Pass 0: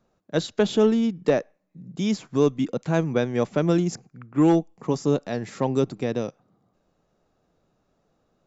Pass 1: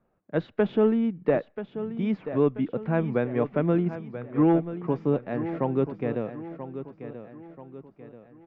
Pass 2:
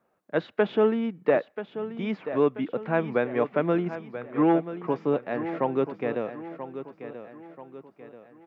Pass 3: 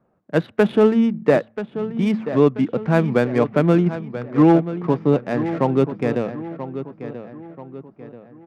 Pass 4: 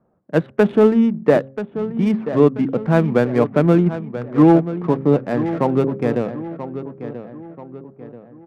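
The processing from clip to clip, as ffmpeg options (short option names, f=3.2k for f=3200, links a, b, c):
-af "lowpass=f=2.4k:w=0.5412,lowpass=f=2.4k:w=1.3066,aecho=1:1:984|1968|2952|3936:0.266|0.117|0.0515|0.0227,volume=-2.5dB"
-af "highpass=f=560:p=1,volume=5dB"
-af "bass=f=250:g=11,treble=f=4k:g=11,bandreject=f=110.7:t=h:w=4,bandreject=f=221.4:t=h:w=4,adynamicsmooth=sensitivity=6.5:basefreq=1.7k,volume=5dB"
-af "aemphasis=mode=reproduction:type=75kf,adynamicsmooth=sensitivity=7.5:basefreq=2.4k,bandreject=f=134.4:t=h:w=4,bandreject=f=268.8:t=h:w=4,bandreject=f=403.2:t=h:w=4,bandreject=f=537.6:t=h:w=4,volume=2dB"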